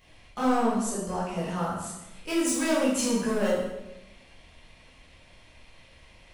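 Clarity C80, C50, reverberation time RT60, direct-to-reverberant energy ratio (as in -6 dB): 4.0 dB, 1.0 dB, 1.0 s, -8.5 dB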